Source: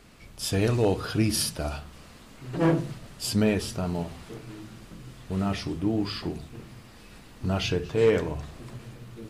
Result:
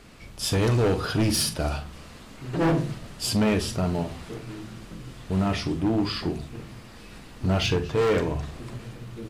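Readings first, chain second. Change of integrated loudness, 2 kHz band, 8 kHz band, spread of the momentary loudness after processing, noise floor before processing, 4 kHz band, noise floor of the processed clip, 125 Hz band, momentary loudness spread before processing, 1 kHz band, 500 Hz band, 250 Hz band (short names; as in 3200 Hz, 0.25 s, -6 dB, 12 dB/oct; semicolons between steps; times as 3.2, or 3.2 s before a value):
+2.0 dB, +3.0 dB, +2.0 dB, 19 LU, -49 dBFS, +3.5 dB, -45 dBFS, +3.0 dB, 21 LU, +4.0 dB, +0.5 dB, +2.0 dB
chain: high shelf 11000 Hz -5.5 dB; hard clip -22.5 dBFS, distortion -10 dB; doubler 43 ms -13 dB; gain +4 dB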